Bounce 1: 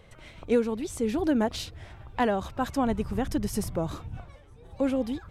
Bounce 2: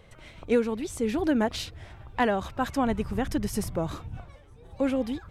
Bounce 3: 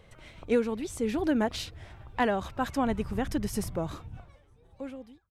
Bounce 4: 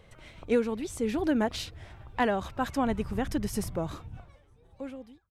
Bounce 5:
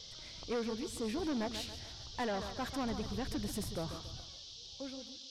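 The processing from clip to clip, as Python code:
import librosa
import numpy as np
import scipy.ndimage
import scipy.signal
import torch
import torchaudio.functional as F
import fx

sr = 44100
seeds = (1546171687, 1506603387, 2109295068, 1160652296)

y1 = fx.dynamic_eq(x, sr, hz=2000.0, q=1.0, threshold_db=-45.0, ratio=4.0, max_db=4)
y2 = fx.fade_out_tail(y1, sr, length_s=1.65)
y2 = F.gain(torch.from_numpy(y2), -2.0).numpy()
y3 = y2
y4 = fx.echo_thinned(y3, sr, ms=140, feedback_pct=43, hz=150.0, wet_db=-12.5)
y4 = 10.0 ** (-26.5 / 20.0) * np.tanh(y4 / 10.0 ** (-26.5 / 20.0))
y4 = fx.dmg_noise_band(y4, sr, seeds[0], low_hz=3100.0, high_hz=5800.0, level_db=-46.0)
y4 = F.gain(torch.from_numpy(y4), -5.0).numpy()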